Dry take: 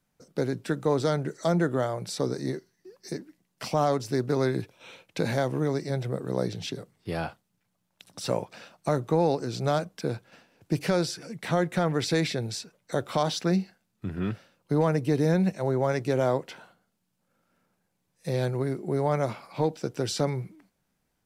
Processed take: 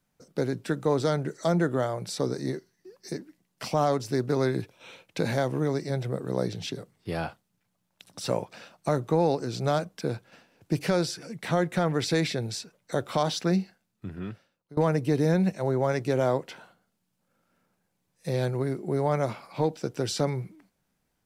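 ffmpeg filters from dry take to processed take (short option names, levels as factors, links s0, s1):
-filter_complex "[0:a]asplit=2[s0][s1];[s0]atrim=end=14.77,asetpts=PTS-STARTPTS,afade=t=out:st=13.58:d=1.19:silence=0.0668344[s2];[s1]atrim=start=14.77,asetpts=PTS-STARTPTS,afade=t=in:d=0.004:c=hsin:silence=0.0668344[s3];[s2][s3]concat=n=2:v=0:a=1"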